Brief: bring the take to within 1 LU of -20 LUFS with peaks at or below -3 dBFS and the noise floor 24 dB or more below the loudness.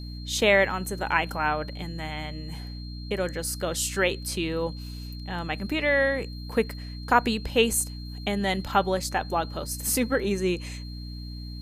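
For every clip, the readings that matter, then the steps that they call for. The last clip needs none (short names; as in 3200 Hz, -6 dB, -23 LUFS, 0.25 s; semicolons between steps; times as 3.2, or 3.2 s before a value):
hum 60 Hz; harmonics up to 300 Hz; hum level -35 dBFS; steady tone 4200 Hz; tone level -45 dBFS; loudness -26.5 LUFS; peak -5.5 dBFS; loudness target -20.0 LUFS
-> de-hum 60 Hz, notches 5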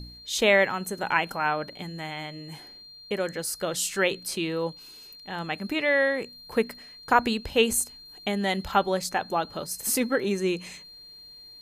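hum none; steady tone 4200 Hz; tone level -45 dBFS
-> notch 4200 Hz, Q 30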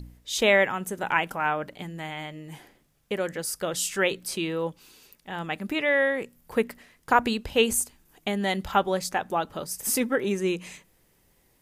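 steady tone none; loudness -26.5 LUFS; peak -6.0 dBFS; loudness target -20.0 LUFS
-> gain +6.5 dB; limiter -3 dBFS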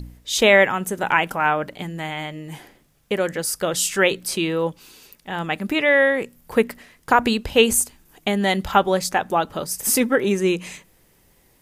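loudness -20.5 LUFS; peak -3.0 dBFS; noise floor -59 dBFS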